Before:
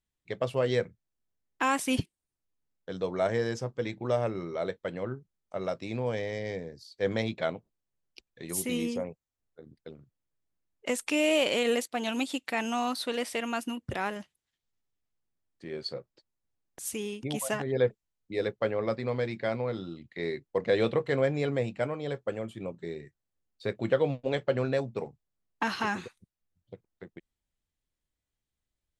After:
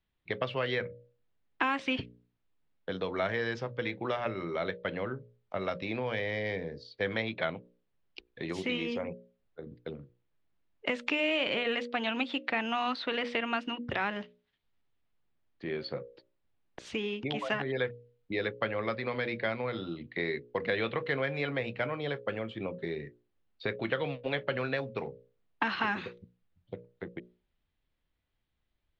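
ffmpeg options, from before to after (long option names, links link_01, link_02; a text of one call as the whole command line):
ffmpeg -i in.wav -filter_complex "[0:a]asettb=1/sr,asplit=3[link_01][link_02][link_03];[link_01]atrim=end=11.054[link_04];[link_02]atrim=start=11.05:end=11.55,asetpts=PTS-STARTPTS,afade=type=in:duration=0.004:curve=qsin,afade=type=out:start_time=0.496:duration=0.004:curve=qsin,lowpass=frequency=7300:width_type=q:width=2.1[link_05];[link_03]atrim=start=11.546[link_06];[link_04][link_05]acrossfade=duration=0.004:curve1=hsin:curve2=qsin[link_07];[link_07][link_06]acrossfade=duration=0.004:curve1=qsin:curve2=hsin,lowpass=frequency=3800:width=0.5412,lowpass=frequency=3800:width=1.3066,bandreject=frequency=60:width_type=h:width=6,bandreject=frequency=120:width_type=h:width=6,bandreject=frequency=180:width_type=h:width=6,bandreject=frequency=240:width_type=h:width=6,bandreject=frequency=300:width_type=h:width=6,bandreject=frequency=360:width_type=h:width=6,bandreject=frequency=420:width_type=h:width=6,bandreject=frequency=480:width_type=h:width=6,bandreject=frequency=540:width_type=h:width=6,bandreject=frequency=600:width_type=h:width=6,acrossover=split=290|1200|2800[link_08][link_09][link_10][link_11];[link_08]acompressor=threshold=-48dB:ratio=4[link_12];[link_09]acompressor=threshold=-43dB:ratio=4[link_13];[link_10]acompressor=threshold=-39dB:ratio=4[link_14];[link_11]acompressor=threshold=-51dB:ratio=4[link_15];[link_12][link_13][link_14][link_15]amix=inputs=4:normalize=0,volume=7dB" out.wav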